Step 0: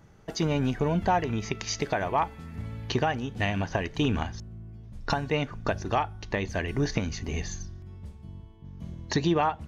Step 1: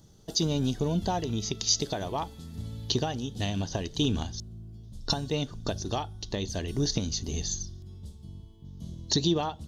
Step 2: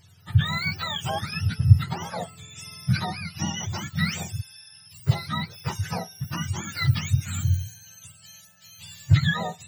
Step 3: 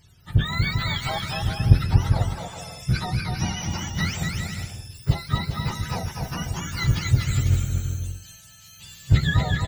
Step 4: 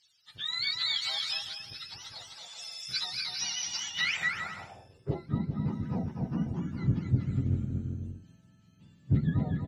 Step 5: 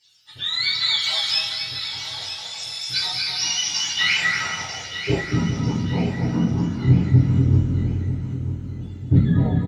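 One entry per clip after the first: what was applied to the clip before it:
drawn EQ curve 340 Hz 0 dB, 2,300 Hz −13 dB, 3,500 Hz +9 dB; level −1 dB
frequency axis turned over on the octave scale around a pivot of 760 Hz; level +2.5 dB
sub-octave generator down 1 octave, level −5 dB; on a send: bouncing-ball delay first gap 240 ms, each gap 0.65×, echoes 5; on the sum: level −1 dB
automatic gain control gain up to 6.5 dB; band-pass filter sweep 4,400 Hz → 240 Hz, 0:03.80–0:05.37
repeating echo 945 ms, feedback 38%, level −10.5 dB; convolution reverb, pre-delay 3 ms, DRR −8 dB; level +1.5 dB

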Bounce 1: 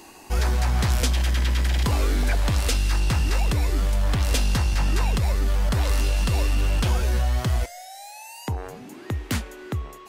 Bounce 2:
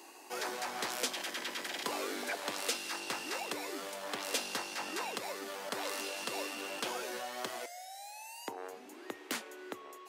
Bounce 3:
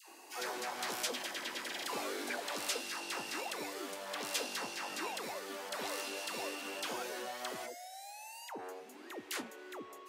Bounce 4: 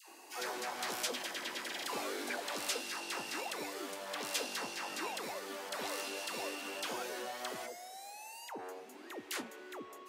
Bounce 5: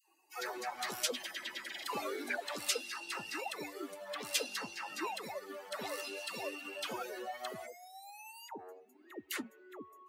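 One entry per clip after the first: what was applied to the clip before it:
high-pass filter 310 Hz 24 dB per octave; level −7 dB
all-pass dispersion lows, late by 95 ms, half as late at 760 Hz; level −1.5 dB
tape delay 203 ms, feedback 79%, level −19.5 dB, low-pass 1,800 Hz
spectral dynamics exaggerated over time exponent 2; level +6 dB

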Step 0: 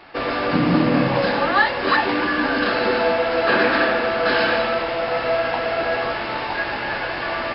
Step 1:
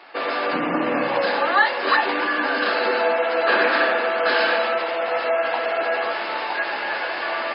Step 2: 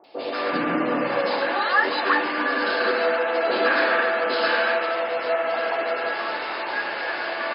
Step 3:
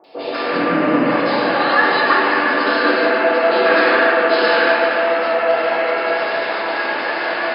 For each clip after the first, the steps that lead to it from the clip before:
gate on every frequency bin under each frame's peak −30 dB strong; high-pass filter 410 Hz 12 dB per octave
three-band delay without the direct sound lows, highs, mids 40/180 ms, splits 810/2,700 Hz
rectangular room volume 130 cubic metres, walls hard, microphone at 0.57 metres; level +2.5 dB

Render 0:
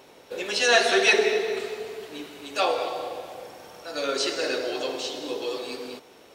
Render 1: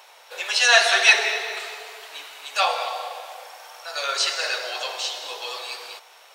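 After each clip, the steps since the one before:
high-pass filter 730 Hz 24 dB per octave
level +5.5 dB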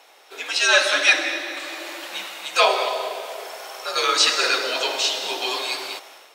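automatic gain control gain up to 9 dB
frequency shifter −100 Hz
level −2 dB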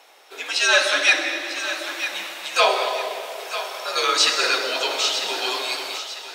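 feedback echo with a high-pass in the loop 948 ms, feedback 44%, high-pass 580 Hz, level −11 dB
soft clipping −3 dBFS, distortion −27 dB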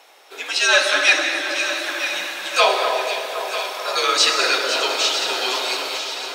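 delay that swaps between a low-pass and a high-pass 254 ms, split 1,800 Hz, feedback 79%, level −7.5 dB
level +1.5 dB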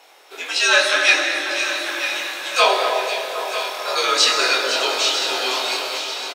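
double-tracking delay 23 ms −4 dB
level −1 dB

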